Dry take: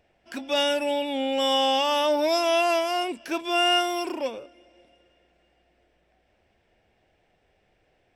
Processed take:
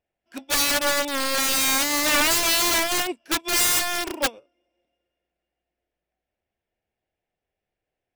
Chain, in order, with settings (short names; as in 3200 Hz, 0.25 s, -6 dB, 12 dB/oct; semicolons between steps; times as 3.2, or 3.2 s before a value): wrapped overs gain 22 dB; upward expander 2.5:1, over -43 dBFS; gain +7.5 dB